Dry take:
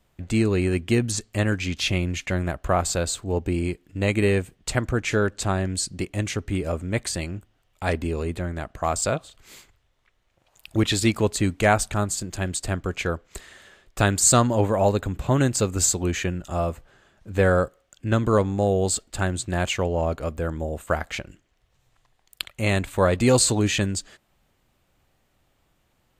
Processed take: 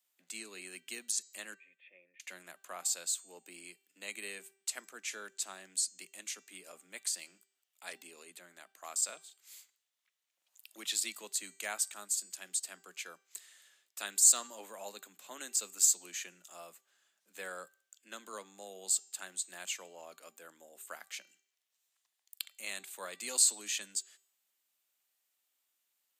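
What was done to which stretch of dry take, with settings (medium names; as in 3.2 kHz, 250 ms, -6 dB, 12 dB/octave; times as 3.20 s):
1.54–2.20 s: cascade formant filter e
whole clip: steep high-pass 170 Hz 96 dB/octave; differentiator; de-hum 390.3 Hz, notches 21; trim -4.5 dB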